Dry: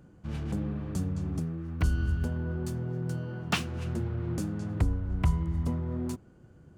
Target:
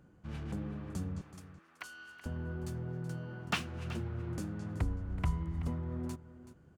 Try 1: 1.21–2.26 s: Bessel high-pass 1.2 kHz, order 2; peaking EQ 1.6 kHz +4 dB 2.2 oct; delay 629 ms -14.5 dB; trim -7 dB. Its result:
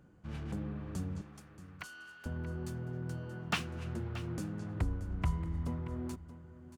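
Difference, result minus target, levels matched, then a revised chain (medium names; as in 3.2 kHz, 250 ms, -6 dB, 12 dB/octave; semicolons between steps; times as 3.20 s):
echo 252 ms late
1.21–2.26 s: Bessel high-pass 1.2 kHz, order 2; peaking EQ 1.6 kHz +4 dB 2.2 oct; delay 377 ms -14.5 dB; trim -7 dB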